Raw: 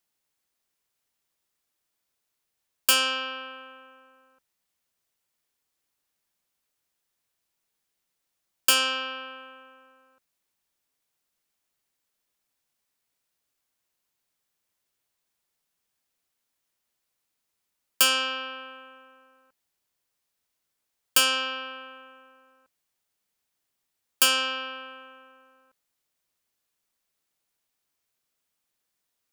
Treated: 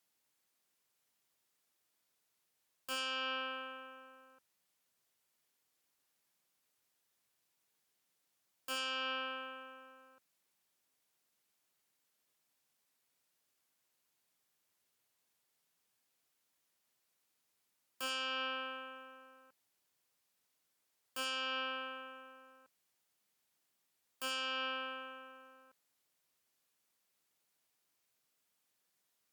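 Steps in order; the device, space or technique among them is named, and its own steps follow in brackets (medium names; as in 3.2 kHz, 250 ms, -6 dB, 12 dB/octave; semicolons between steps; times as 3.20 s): podcast mastering chain (high-pass 100 Hz 12 dB/octave; de-esser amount 55%; compression 2:1, threshold -35 dBFS, peak gain reduction 7.5 dB; peak limiter -29.5 dBFS, peak gain reduction 10.5 dB; MP3 112 kbps 48 kHz)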